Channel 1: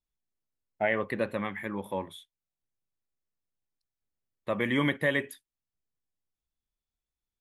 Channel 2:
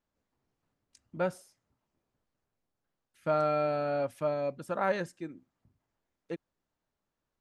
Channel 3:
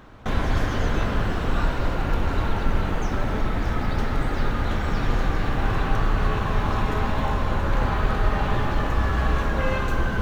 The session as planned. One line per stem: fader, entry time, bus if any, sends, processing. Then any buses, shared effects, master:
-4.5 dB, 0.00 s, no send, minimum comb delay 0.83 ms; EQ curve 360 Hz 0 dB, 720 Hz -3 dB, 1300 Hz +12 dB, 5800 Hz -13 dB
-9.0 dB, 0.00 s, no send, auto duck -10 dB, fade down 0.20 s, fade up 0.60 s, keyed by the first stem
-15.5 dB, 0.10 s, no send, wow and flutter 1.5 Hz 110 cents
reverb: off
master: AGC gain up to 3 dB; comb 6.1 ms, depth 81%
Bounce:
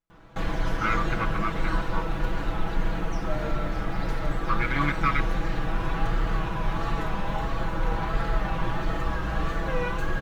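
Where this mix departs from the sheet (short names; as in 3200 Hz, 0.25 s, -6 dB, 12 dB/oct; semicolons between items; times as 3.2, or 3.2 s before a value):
stem 3 -15.5 dB -> -6.5 dB; master: missing AGC gain up to 3 dB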